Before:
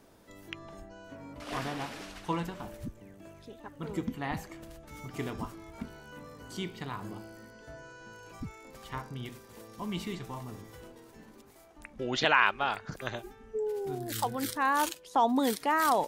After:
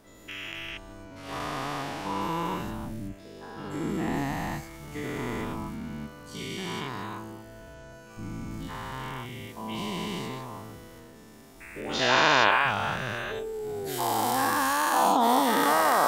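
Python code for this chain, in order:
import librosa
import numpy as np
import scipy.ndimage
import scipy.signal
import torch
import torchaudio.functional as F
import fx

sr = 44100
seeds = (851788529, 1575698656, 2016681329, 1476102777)

y = fx.spec_dilate(x, sr, span_ms=480)
y = y * librosa.db_to_amplitude(-4.0)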